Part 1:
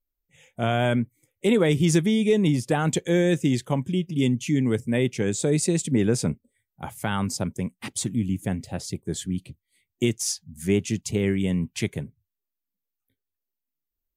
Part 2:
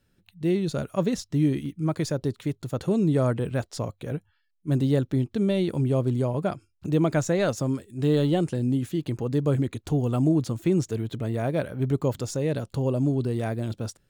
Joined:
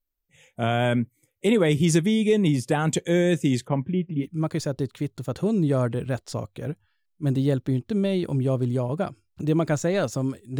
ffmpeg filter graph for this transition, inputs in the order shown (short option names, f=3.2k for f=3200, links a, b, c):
-filter_complex "[0:a]asplit=3[a][b][c];[a]afade=t=out:st=3.66:d=0.02[d];[b]lowpass=f=2.4k:w=0.5412,lowpass=f=2.4k:w=1.3066,afade=t=in:st=3.66:d=0.02,afade=t=out:st=4.26:d=0.02[e];[c]afade=t=in:st=4.26:d=0.02[f];[d][e][f]amix=inputs=3:normalize=0,apad=whole_dur=10.59,atrim=end=10.59,atrim=end=4.26,asetpts=PTS-STARTPTS[g];[1:a]atrim=start=1.63:end=8.04,asetpts=PTS-STARTPTS[h];[g][h]acrossfade=d=0.08:c1=tri:c2=tri"